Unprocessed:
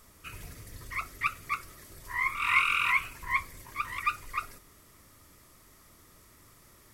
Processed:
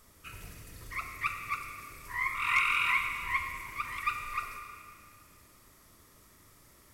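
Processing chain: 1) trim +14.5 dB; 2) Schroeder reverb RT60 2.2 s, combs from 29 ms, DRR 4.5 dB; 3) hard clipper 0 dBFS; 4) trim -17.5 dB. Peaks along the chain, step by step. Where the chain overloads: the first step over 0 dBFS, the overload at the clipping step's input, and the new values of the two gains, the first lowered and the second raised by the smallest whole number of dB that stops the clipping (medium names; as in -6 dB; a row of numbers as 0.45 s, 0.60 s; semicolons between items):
+2.5 dBFS, +3.5 dBFS, 0.0 dBFS, -17.5 dBFS; step 1, 3.5 dB; step 1 +10.5 dB, step 4 -13.5 dB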